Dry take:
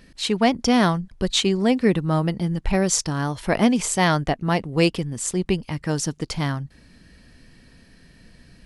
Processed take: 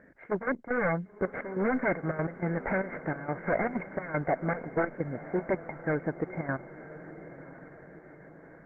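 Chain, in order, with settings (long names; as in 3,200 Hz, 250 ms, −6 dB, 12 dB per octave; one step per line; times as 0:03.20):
0:01.58–0:03.76: spectral envelope flattened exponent 0.6
high-pass filter 230 Hz 6 dB per octave
notch filter 1,000 Hz, Q 25
wave folding −20.5 dBFS
gate pattern "xxx.x.x..xx" 192 BPM −12 dB
Chebyshev low-pass with heavy ripple 2,200 Hz, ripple 9 dB
feedback delay with all-pass diffusion 1,007 ms, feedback 56%, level −14 dB
level +5 dB
Opus 16 kbit/s 48,000 Hz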